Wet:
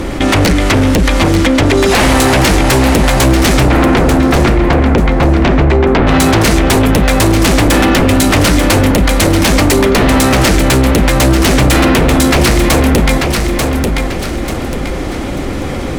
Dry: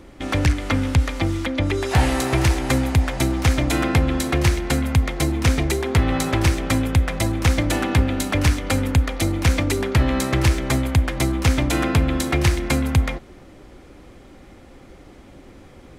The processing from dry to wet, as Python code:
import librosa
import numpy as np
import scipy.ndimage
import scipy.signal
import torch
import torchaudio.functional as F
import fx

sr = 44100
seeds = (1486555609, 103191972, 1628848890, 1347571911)

y = fx.lowpass(x, sr, hz=1700.0, slope=12, at=(3.66, 6.07))
y = fx.fold_sine(y, sr, drive_db=10, ceiling_db=-8.0)
y = fx.echo_feedback(y, sr, ms=890, feedback_pct=24, wet_db=-8.0)
y = fx.env_flatten(y, sr, amount_pct=50)
y = y * 10.0 ** (1.0 / 20.0)